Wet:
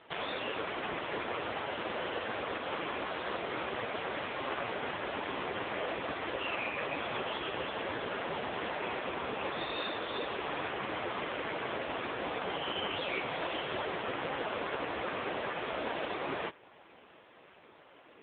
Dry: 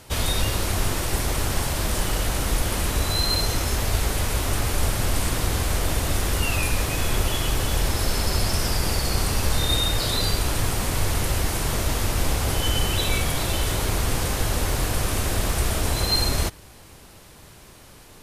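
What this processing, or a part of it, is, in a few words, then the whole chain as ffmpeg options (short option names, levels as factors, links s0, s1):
telephone: -af "highpass=330,lowpass=3200" -ar 8000 -c:a libopencore_amrnb -b:a 5150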